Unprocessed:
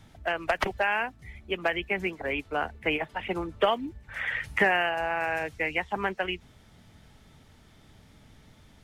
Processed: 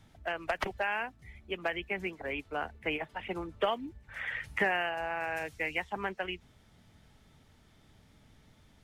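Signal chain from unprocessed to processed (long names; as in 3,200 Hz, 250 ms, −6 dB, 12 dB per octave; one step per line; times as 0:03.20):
0:05.36–0:05.90: high-shelf EQ 4,100 Hz +7.5 dB
level −6 dB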